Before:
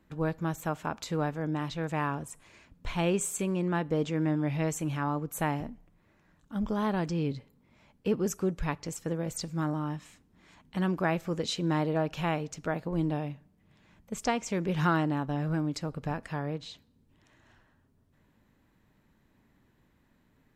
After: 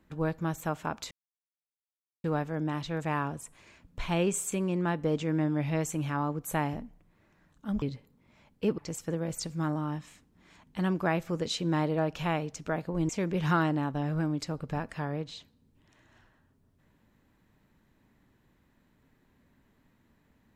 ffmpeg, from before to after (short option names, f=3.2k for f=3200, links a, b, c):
-filter_complex "[0:a]asplit=5[a][b][c][d][e];[a]atrim=end=1.11,asetpts=PTS-STARTPTS,afade=t=out:st=1.106:d=0.004:c=hsin,apad=pad_dur=1.13[f];[b]atrim=start=1.11:end=6.692,asetpts=PTS-STARTPTS,afade=t=in:d=0.004:c=hsin[g];[c]atrim=start=7.248:end=8.212[h];[d]atrim=start=8.758:end=13.072[i];[e]atrim=start=14.428[j];[f][g]concat=n=2:v=0:a=1[k];[k][h]acrossfade=d=0.004:c1=hsin:c2=hsin[l];[l][i]acrossfade=d=0.004:c1=hsin:c2=hsin[m];[m][j]acrossfade=d=0.004:c1=hsin:c2=hsin"